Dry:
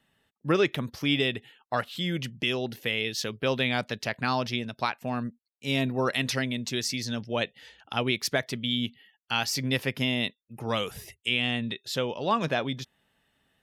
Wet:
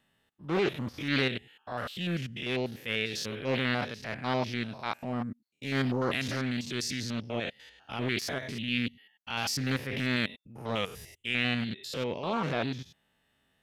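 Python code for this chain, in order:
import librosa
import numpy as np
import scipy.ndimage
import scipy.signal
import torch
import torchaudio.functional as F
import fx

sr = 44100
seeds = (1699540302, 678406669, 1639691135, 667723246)

y = fx.spec_steps(x, sr, hold_ms=100)
y = fx.transient(y, sr, attack_db=-7, sustain_db=-1)
y = fx.doppler_dist(y, sr, depth_ms=0.35)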